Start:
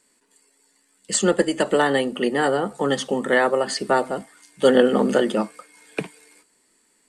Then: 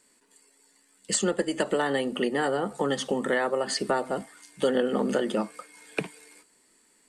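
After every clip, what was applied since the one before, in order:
downward compressor 3 to 1, threshold −24 dBFS, peak gain reduction 10.5 dB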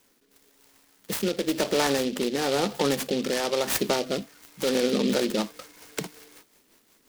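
brickwall limiter −17.5 dBFS, peak gain reduction 5.5 dB
rotating-speaker cabinet horn 1 Hz, later 5.5 Hz, at 0:04.69
short delay modulated by noise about 3,400 Hz, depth 0.1 ms
level +4.5 dB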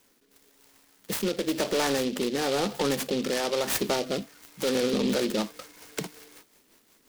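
soft clipping −18 dBFS, distortion −18 dB

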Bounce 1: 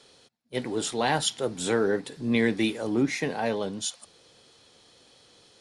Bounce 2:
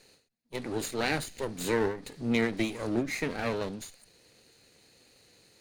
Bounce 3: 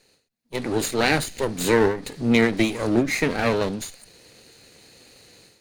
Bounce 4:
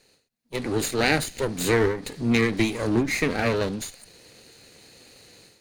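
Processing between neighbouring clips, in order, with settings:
lower of the sound and its delayed copy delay 0.46 ms; every ending faded ahead of time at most 130 dB per second; level −2 dB
automatic gain control gain up to 11.5 dB; level −1.5 dB
one-sided soft clipper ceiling −18.5 dBFS

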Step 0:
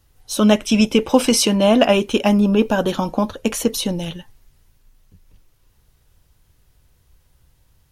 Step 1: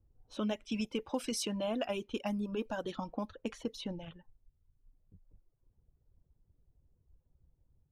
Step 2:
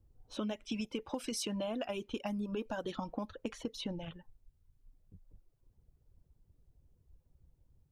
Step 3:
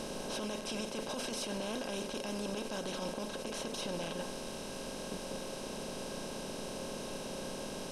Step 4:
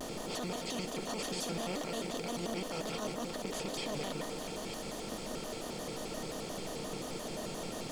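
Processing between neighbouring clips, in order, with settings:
reverb reduction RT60 0.96 s; downward compressor 2 to 1, threshold −32 dBFS, peak gain reduction 13 dB; low-pass that shuts in the quiet parts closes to 440 Hz, open at −22.5 dBFS; level −9 dB
downward compressor, threshold −37 dBFS, peak gain reduction 8.5 dB; level +3 dB
compressor on every frequency bin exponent 0.2; brickwall limiter −24.5 dBFS, peak gain reduction 9 dB; tuned comb filter 540 Hz, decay 0.18 s, harmonics all, mix 70%; level +5 dB
delay that plays each chunk backwards 474 ms, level −7 dB; bit reduction 10 bits; pitch modulation by a square or saw wave square 5.7 Hz, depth 250 cents

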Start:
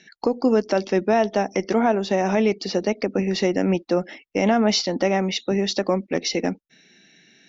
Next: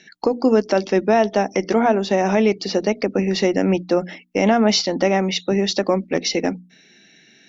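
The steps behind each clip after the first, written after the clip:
mains-hum notches 60/120/180/240/300 Hz
level +3 dB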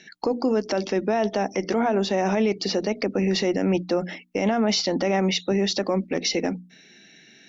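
brickwall limiter −14 dBFS, peak gain reduction 8.5 dB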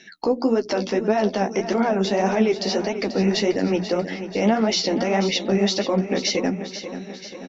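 flanger 1.7 Hz, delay 7 ms, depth 9.9 ms, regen +22%
on a send: repeating echo 487 ms, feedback 59%, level −11.5 dB
on the sum: level +5 dB

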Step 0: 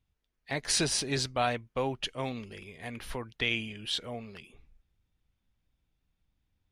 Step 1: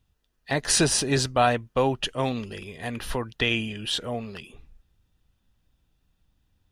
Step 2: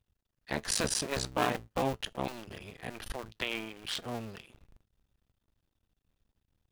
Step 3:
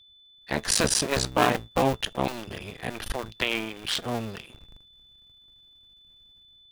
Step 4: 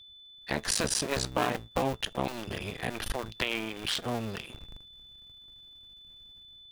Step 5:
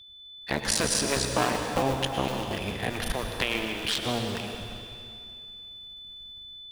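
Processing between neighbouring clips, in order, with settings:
notch filter 2,200 Hz, Q 6.6; dynamic equaliser 4,200 Hz, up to −5 dB, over −43 dBFS, Q 1.3; level +8.5 dB
sub-harmonics by changed cycles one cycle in 2, muted; tuned comb filter 110 Hz, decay 0.17 s, harmonics all, mix 30%; level −4 dB
automatic gain control gain up to 8 dB; steady tone 3,500 Hz −53 dBFS
downward compressor 2 to 1, threshold −36 dBFS, peak gain reduction 11.5 dB; level +3.5 dB
dense smooth reverb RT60 2.4 s, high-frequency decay 0.95×, pre-delay 90 ms, DRR 4 dB; level +2.5 dB

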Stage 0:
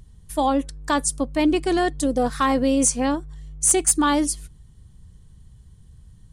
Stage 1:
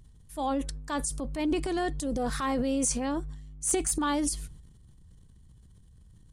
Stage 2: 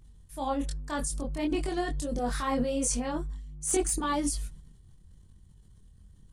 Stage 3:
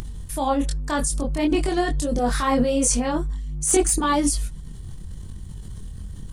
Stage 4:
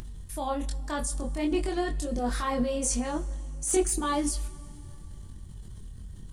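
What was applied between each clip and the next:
transient designer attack −5 dB, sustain +9 dB; level −8.5 dB
multi-voice chorus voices 4, 1 Hz, delay 23 ms, depth 3 ms; level +2 dB
upward compression, threshold −31 dBFS; level +8.5 dB
convolution reverb RT60 3.1 s, pre-delay 3 ms, DRR 11.5 dB; level −8 dB

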